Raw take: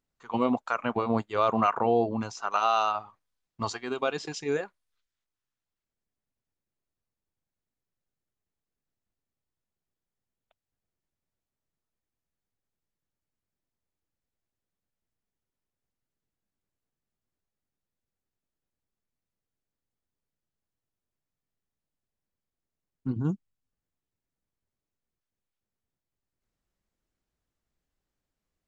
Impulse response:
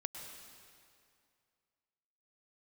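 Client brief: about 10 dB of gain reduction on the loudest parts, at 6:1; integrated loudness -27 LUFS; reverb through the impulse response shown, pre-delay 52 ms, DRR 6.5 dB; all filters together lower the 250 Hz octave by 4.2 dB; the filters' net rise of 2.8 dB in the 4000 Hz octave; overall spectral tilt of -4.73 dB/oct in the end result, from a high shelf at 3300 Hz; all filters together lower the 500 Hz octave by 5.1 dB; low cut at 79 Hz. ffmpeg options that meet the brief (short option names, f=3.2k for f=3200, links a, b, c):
-filter_complex "[0:a]highpass=79,equalizer=f=250:t=o:g=-3.5,equalizer=f=500:t=o:g=-5.5,highshelf=f=3.3k:g=-4,equalizer=f=4k:t=o:g=6.5,acompressor=threshold=-32dB:ratio=6,asplit=2[a][b];[1:a]atrim=start_sample=2205,adelay=52[c];[b][c]afir=irnorm=-1:irlink=0,volume=-5.5dB[d];[a][d]amix=inputs=2:normalize=0,volume=10dB"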